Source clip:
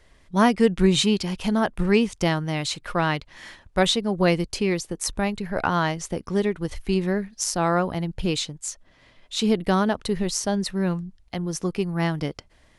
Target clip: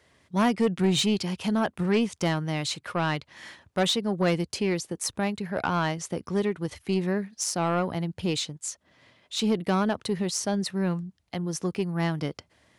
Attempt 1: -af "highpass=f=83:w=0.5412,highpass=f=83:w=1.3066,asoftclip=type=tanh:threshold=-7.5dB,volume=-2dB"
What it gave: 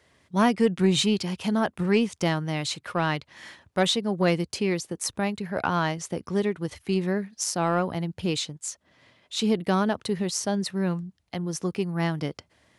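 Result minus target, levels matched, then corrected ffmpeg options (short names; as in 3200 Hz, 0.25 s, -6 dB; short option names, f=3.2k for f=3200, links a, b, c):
soft clip: distortion -9 dB
-af "highpass=f=83:w=0.5412,highpass=f=83:w=1.3066,asoftclip=type=tanh:threshold=-14dB,volume=-2dB"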